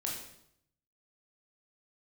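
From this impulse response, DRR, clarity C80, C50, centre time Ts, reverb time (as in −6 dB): −2.5 dB, 6.5 dB, 3.0 dB, 45 ms, 0.75 s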